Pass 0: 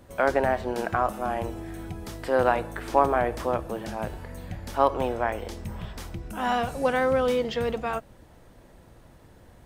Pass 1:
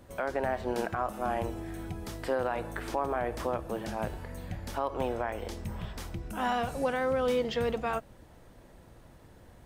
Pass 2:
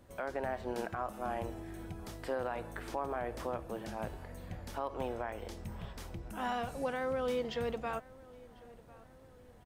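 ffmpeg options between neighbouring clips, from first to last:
-af "alimiter=limit=-17dB:level=0:latency=1:release=190,volume=-2dB"
-filter_complex "[0:a]asplit=2[a][b];[b]adelay=1048,lowpass=f=2.5k:p=1,volume=-21dB,asplit=2[c][d];[d]adelay=1048,lowpass=f=2.5k:p=1,volume=0.53,asplit=2[e][f];[f]adelay=1048,lowpass=f=2.5k:p=1,volume=0.53,asplit=2[g][h];[h]adelay=1048,lowpass=f=2.5k:p=1,volume=0.53[i];[a][c][e][g][i]amix=inputs=5:normalize=0,volume=-6dB"

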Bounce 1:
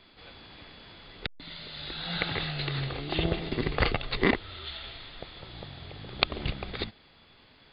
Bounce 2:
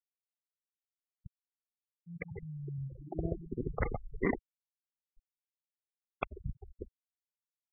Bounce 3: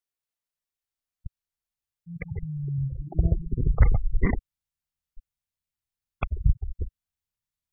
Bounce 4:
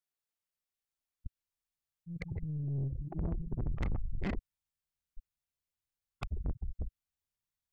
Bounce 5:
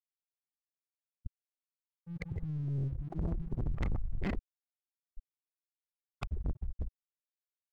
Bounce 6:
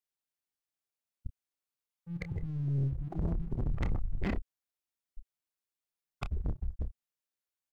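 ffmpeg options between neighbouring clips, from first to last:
-af "lowpass=2k,afftfilt=real='re*gte(hypot(re,im),0.1)':imag='im*gte(hypot(re,im),0.1)':win_size=1024:overlap=0.75,volume=-6dB"
-af "asubboost=boost=9:cutoff=120,volume=3.5dB"
-af "aeval=exprs='(tanh(25.1*val(0)+0.3)-tanh(0.3))/25.1':c=same,volume=-2.5dB"
-af "aeval=exprs='sgn(val(0))*max(abs(val(0))-0.00106,0)':c=same,volume=1dB"
-filter_complex "[0:a]asplit=2[a][b];[b]adelay=29,volume=-10.5dB[c];[a][c]amix=inputs=2:normalize=0,volume=1.5dB"

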